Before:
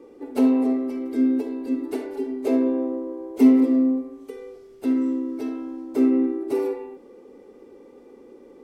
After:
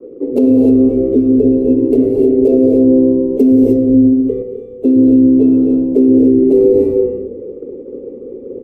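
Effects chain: Wiener smoothing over 9 samples; bell 1600 Hz -15 dB 0.85 oct; compressor 6:1, threshold -23 dBFS, peak gain reduction 12.5 dB; resonant low shelf 660 Hz +9.5 dB, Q 3; notch 2100 Hz, Q 22; frequency-shifting echo 0.109 s, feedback 42%, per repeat -150 Hz, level -19.5 dB; non-linear reverb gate 0.33 s rising, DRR 1.5 dB; expander -29 dBFS; 4.42–4.85 resonator 60 Hz, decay 0.35 s, harmonics all, mix 70%; maximiser +5.5 dB; gain -1 dB

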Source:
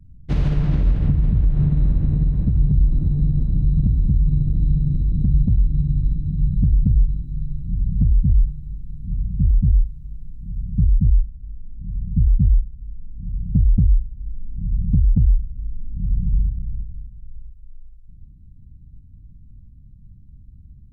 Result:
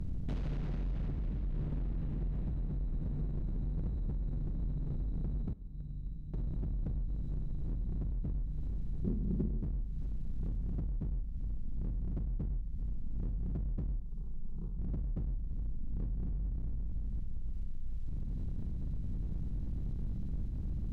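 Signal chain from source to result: per-bin compression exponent 0.6; bell 100 Hz -5 dB 1.4 oct; 5.53–6.34 gate -10 dBFS, range -24 dB; compressor 20:1, threshold -29 dBFS, peak gain reduction 19 dB; hard clip -32 dBFS, distortion -12 dB; 9.03–9.63 small resonant body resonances 220/360 Hz, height 13 dB; 14–14.79 fixed phaser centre 400 Hz, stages 8; reverb RT60 1.7 s, pre-delay 31 ms, DRR 17.5 dB

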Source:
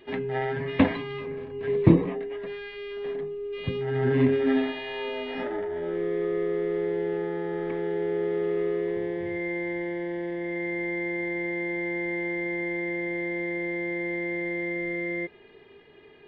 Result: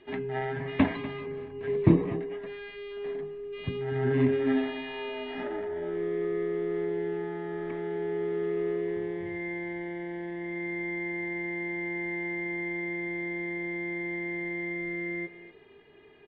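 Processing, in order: LPF 3900 Hz 12 dB/oct; notch 510 Hz, Q 12; echo 0.244 s -15.5 dB; gain -3 dB

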